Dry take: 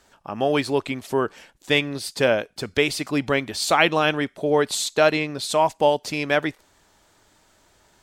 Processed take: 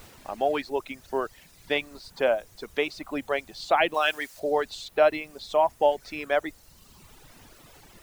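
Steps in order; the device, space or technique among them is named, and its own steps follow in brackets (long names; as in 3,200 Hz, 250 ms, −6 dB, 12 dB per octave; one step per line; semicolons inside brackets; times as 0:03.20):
horn gramophone (band-pass filter 270–3,700 Hz; parametric band 690 Hz +6.5 dB 0.77 octaves; tape wow and flutter 21 cents; pink noise bed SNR 21 dB)
reverb reduction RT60 1.3 s
0:03.94–0:04.40: tilt shelving filter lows −8.5 dB, about 750 Hz
level −6.5 dB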